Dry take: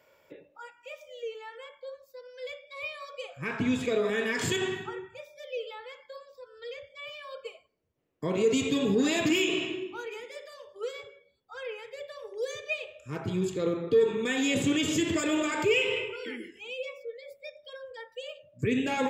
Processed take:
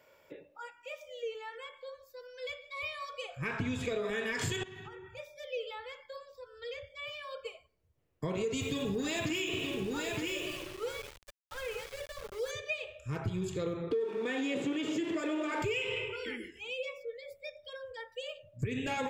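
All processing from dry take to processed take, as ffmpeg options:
ffmpeg -i in.wav -filter_complex "[0:a]asettb=1/sr,asplit=3[link_01][link_02][link_03];[link_01]atrim=end=1.534[link_04];[link_02]atrim=start=1.53:end=3.35,asetpts=PTS-STARTPTS,afade=type=in:duration=0.004:curve=qsin,afade=type=out:start_time=1.816:duration=0.004:curve=qsin,aecho=1:1:2.7:0.38,atrim=end_sample=80262,aecho=1:1:148:0.1,atrim=end_sample=80262[link_05];[link_03]atrim=start=3.346[link_06];[link_04][link_05]acrossfade=duration=0.004:curve1=hsin:curve2=qsin[link_07];[link_07][link_06]acrossfade=duration=0.004:curve1=qsin:curve2=hsin,asettb=1/sr,asplit=3[link_08][link_09][link_10];[link_08]atrim=end=4.634[link_11];[link_09]atrim=start=4.63:end=5.17,asetpts=PTS-STARTPTS,afade=type=in:duration=0.004:curve=qsin,afade=type=out:start_time=0.536:duration=0.004:curve=qsin,bandreject=frequency=7700:width=6.2,acompressor=threshold=-42dB:ratio=16:attack=3.2:release=140:knee=1:detection=peak[link_12];[link_10]atrim=start=5.166[link_13];[link_11][link_12]acrossfade=duration=0.004:curve1=hsin:curve2=qsin[link_14];[link_14][link_13]acrossfade=duration=0.004:curve1=qsin:curve2=hsin,asettb=1/sr,asplit=3[link_15][link_16][link_17];[link_15]atrim=end=8.614[link_18];[link_16]atrim=start=8.61:end=12.51,asetpts=PTS-STARTPTS,afade=type=in:duration=0.004:curve=qsin,afade=type=out:start_time=3.896:duration=0.004:curve=qsin,aecho=1:1:921:0.422,atrim=end_sample=171990,aeval=exprs='val(0)*gte(abs(val(0)),0.0075)':channel_layout=same[link_19];[link_17]atrim=start=12.506[link_20];[link_18][link_19]acrossfade=duration=0.004:curve1=hsin:curve2=qsin[link_21];[link_21][link_20]acrossfade=duration=0.004:curve1=qsin:curve2=hsin,asettb=1/sr,asplit=3[link_22][link_23][link_24];[link_22]atrim=end=13.914[link_25];[link_23]atrim=start=13.91:end=15.62,asetpts=PTS-STARTPTS,afade=type=in:duration=0.004:curve=qsin,afade=type=out:start_time=1.706:duration=0.004:curve=qsin,aeval=exprs='val(0)+0.5*0.0168*sgn(val(0))':channel_layout=same,highpass=frequency=290:width=0.5412,highpass=frequency=290:width=1.3066,aemphasis=mode=reproduction:type=riaa[link_26];[link_24]atrim=start=15.616[link_27];[link_25][link_26]acrossfade=duration=0.004:curve1=hsin:curve2=qsin[link_28];[link_28][link_27]acrossfade=duration=0.004:curve1=qsin:curve2=hsin,asubboost=boost=6:cutoff=94,acompressor=threshold=-31dB:ratio=5" out.wav

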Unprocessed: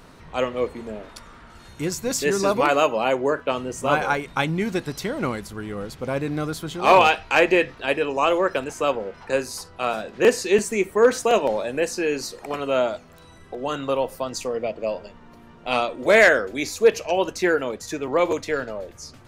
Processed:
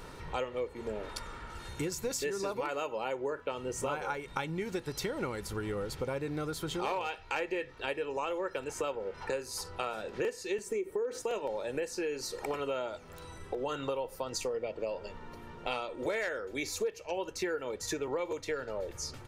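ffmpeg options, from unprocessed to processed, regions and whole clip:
ffmpeg -i in.wav -filter_complex "[0:a]asettb=1/sr,asplit=3[link_01][link_02][link_03];[link_01]atrim=end=10.664[link_04];[link_02]atrim=start=10.66:end=11.22,asetpts=PTS-STARTPTS,afade=type=in:duration=0.004:curve=qsin,afade=type=out:start_time=0.556:duration=0.004:curve=qsin,equalizer=frequency=380:width_type=o:width=1.3:gain=11,acompressor=threshold=-16dB:ratio=3:attack=3.2:release=140:knee=1:detection=peak[link_05];[link_03]atrim=start=11.216[link_06];[link_04][link_05]acrossfade=duration=0.004:curve1=hsin:curve2=qsin[link_07];[link_07][link_06]acrossfade=duration=0.004:curve1=qsin:curve2=hsin,aecho=1:1:2.2:0.42,acompressor=threshold=-32dB:ratio=8" out.wav

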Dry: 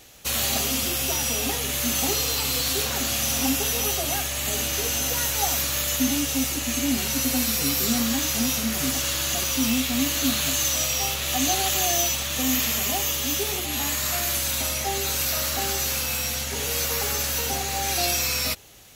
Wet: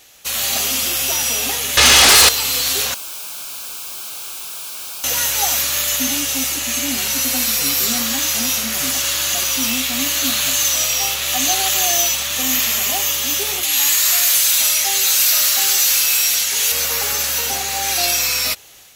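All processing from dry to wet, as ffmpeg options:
ffmpeg -i in.wav -filter_complex "[0:a]asettb=1/sr,asplit=3[link_01][link_02][link_03];[link_01]atrim=end=1.774[link_04];[link_02]atrim=start=1.77:end=2.29,asetpts=PTS-STARTPTS,afade=type=in:duration=0.004:curve=qsin,afade=type=out:start_time=0.516:duration=0.004:curve=qsin,lowpass=frequency=5300:width=0.5412,lowpass=frequency=5300:width=1.3066,aecho=1:1:2.4:0.8,atrim=end_sample=22932,aeval=exprs='0.266*sin(PI/2*5.01*val(0)/0.266)':channel_layout=same[link_05];[link_03]atrim=start=2.286[link_06];[link_04][link_05]acrossfade=duration=0.004:curve1=hsin:curve2=qsin[link_07];[link_07][link_06]acrossfade=duration=0.004:curve1=qsin:curve2=hsin,asettb=1/sr,asplit=3[link_08][link_09][link_10];[link_08]atrim=end=2.944[link_11];[link_09]atrim=start=2.94:end=5.04,asetpts=PTS-STARTPTS,afade=type=in:duration=0.004:curve=qsin,afade=type=out:start_time=2.096:duration=0.004:curve=qsin,acrossover=split=530|2600[link_12][link_13][link_14];[link_12]acompressor=threshold=-43dB:ratio=4[link_15];[link_13]acompressor=threshold=-33dB:ratio=4[link_16];[link_14]acompressor=threshold=-27dB:ratio=4[link_17];[link_15][link_16][link_17]amix=inputs=3:normalize=0,aeval=exprs='(mod(39.8*val(0)+1,2)-1)/39.8':channel_layout=same,asuperstop=centerf=1900:order=4:qfactor=3.2[link_18];[link_10]atrim=start=5.036[link_19];[link_11][link_18]acrossfade=duration=0.004:curve1=hsin:curve2=qsin[link_20];[link_20][link_19]acrossfade=duration=0.004:curve1=qsin:curve2=hsin,asettb=1/sr,asplit=3[link_21][link_22][link_23];[link_21]atrim=end=13.634[link_24];[link_22]atrim=start=13.63:end=16.72,asetpts=PTS-STARTPTS,afade=type=in:duration=0.004:curve=qsin,afade=type=out:start_time=3.086:duration=0.004:curve=qsin,highpass=frequency=130:poles=1,tiltshelf=frequency=1400:gain=-6,asoftclip=type=hard:threshold=-16dB[link_25];[link_23]atrim=start=16.716[link_26];[link_24][link_25]acrossfade=duration=0.004:curve1=hsin:curve2=qsin[link_27];[link_27][link_26]acrossfade=duration=0.004:curve1=qsin:curve2=hsin,lowshelf=frequency=490:gain=-12,dynaudnorm=framelen=330:gausssize=3:maxgain=3.5dB,volume=3.5dB" out.wav

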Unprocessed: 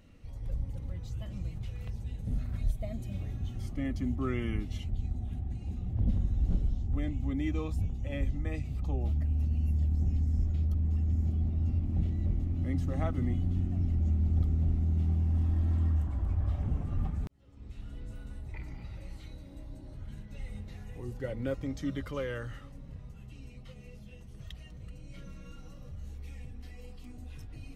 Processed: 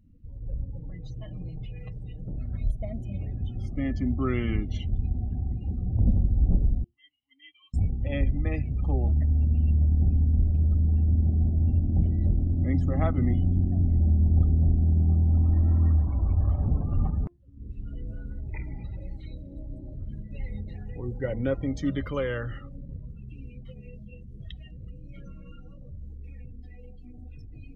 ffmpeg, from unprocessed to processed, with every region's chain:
ffmpeg -i in.wav -filter_complex "[0:a]asettb=1/sr,asplit=3[link_01][link_02][link_03];[link_01]atrim=end=0.784[link_04];[link_02]atrim=start=0.78:end=2.38,asetpts=PTS-STARTPTS,afade=type=in:duration=0.004:curve=qsin,afade=type=out:start_time=1.596:duration=0.004:curve=qsin,bandreject=frequency=50:width_type=h:width=6,bandreject=frequency=100:width_type=h:width=6,bandreject=frequency=150:width_type=h:width=6,bandreject=frequency=200:width_type=h:width=6,bandreject=frequency=250:width_type=h:width=6,bandreject=frequency=300:width_type=h:width=6,bandreject=frequency=350:width_type=h:width=6,bandreject=frequency=400:width_type=h:width=6,aecho=1:1:6.5:0.79,atrim=end_sample=70560,asoftclip=type=hard:threshold=-33dB[link_05];[link_03]atrim=start=2.376[link_06];[link_04][link_05]acrossfade=duration=0.004:curve1=hsin:curve2=qsin[link_07];[link_07][link_06]acrossfade=duration=0.004:curve1=qsin:curve2=hsin,asettb=1/sr,asplit=3[link_08][link_09][link_10];[link_08]atrim=end=6.844[link_11];[link_09]atrim=start=6.84:end=7.74,asetpts=PTS-STARTPTS,afade=type=in:duration=0.004:curve=qsin,afade=type=out:start_time=0.896:duration=0.004:curve=qsin,aecho=1:1:1:0.94,atrim=end_sample=39690,acompressor=threshold=-26dB:ratio=6:attack=3.2:release=140:knee=1:detection=peak,bandpass=frequency=2900:width_type=q:width=6.1[link_12];[link_10]atrim=start=7.736[link_13];[link_11][link_12]acrossfade=duration=0.004:curve1=hsin:curve2=qsin[link_14];[link_14][link_13]acrossfade=duration=0.004:curve1=qsin:curve2=hsin,bandreject=frequency=347.8:width_type=h:width=4,bandreject=frequency=695.6:width_type=h:width=4,bandreject=frequency=1043.4:width_type=h:width=4,bandreject=frequency=1391.2:width_type=h:width=4,bandreject=frequency=1739:width_type=h:width=4,bandreject=frequency=2086.8:width_type=h:width=4,bandreject=frequency=2434.6:width_type=h:width=4,bandreject=frequency=2782.4:width_type=h:width=4,bandreject=frequency=3130.2:width_type=h:width=4,bandreject=frequency=3478:width_type=h:width=4,bandreject=frequency=3825.8:width_type=h:width=4,bandreject=frequency=4173.6:width_type=h:width=4,bandreject=frequency=4521.4:width_type=h:width=4,bandreject=frequency=4869.2:width_type=h:width=4,bandreject=frequency=5217:width_type=h:width=4,bandreject=frequency=5564.8:width_type=h:width=4,bandreject=frequency=5912.6:width_type=h:width=4,bandreject=frequency=6260.4:width_type=h:width=4,bandreject=frequency=6608.2:width_type=h:width=4,bandreject=frequency=6956:width_type=h:width=4,bandreject=frequency=7303.8:width_type=h:width=4,bandreject=frequency=7651.6:width_type=h:width=4,bandreject=frequency=7999.4:width_type=h:width=4,bandreject=frequency=8347.2:width_type=h:width=4,bandreject=frequency=8695:width_type=h:width=4,bandreject=frequency=9042.8:width_type=h:width=4,bandreject=frequency=9390.6:width_type=h:width=4,bandreject=frequency=9738.4:width_type=h:width=4,bandreject=frequency=10086.2:width_type=h:width=4,bandreject=frequency=10434:width_type=h:width=4,bandreject=frequency=10781.8:width_type=h:width=4,bandreject=frequency=11129.6:width_type=h:width=4,afftdn=noise_reduction=26:noise_floor=-52,dynaudnorm=framelen=340:gausssize=21:maxgain=5dB,volume=1.5dB" out.wav

